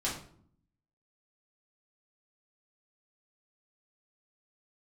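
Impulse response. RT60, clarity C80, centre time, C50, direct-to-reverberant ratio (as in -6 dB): 0.60 s, 10.0 dB, 33 ms, 5.5 dB, -6.5 dB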